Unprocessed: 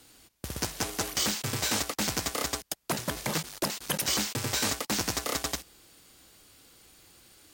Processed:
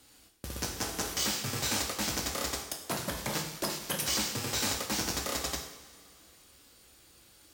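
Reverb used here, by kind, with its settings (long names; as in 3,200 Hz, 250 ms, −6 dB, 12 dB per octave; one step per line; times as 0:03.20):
coupled-rooms reverb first 0.67 s, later 2.7 s, from −17 dB, DRR 1.5 dB
level −4.5 dB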